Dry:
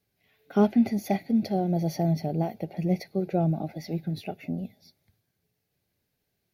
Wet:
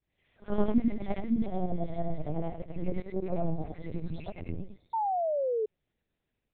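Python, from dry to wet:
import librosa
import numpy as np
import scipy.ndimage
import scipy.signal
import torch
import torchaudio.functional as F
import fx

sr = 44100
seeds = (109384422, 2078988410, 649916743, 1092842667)

y = fx.frame_reverse(x, sr, frame_ms=223.0)
y = fx.lpc_vocoder(y, sr, seeds[0], excitation='pitch_kept', order=8)
y = fx.spec_paint(y, sr, seeds[1], shape='fall', start_s=4.93, length_s=0.73, low_hz=420.0, high_hz=930.0, level_db=-29.0)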